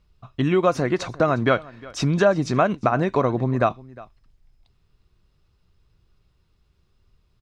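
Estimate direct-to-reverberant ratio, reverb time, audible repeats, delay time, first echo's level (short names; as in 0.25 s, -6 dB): none, none, 1, 0.357 s, -21.0 dB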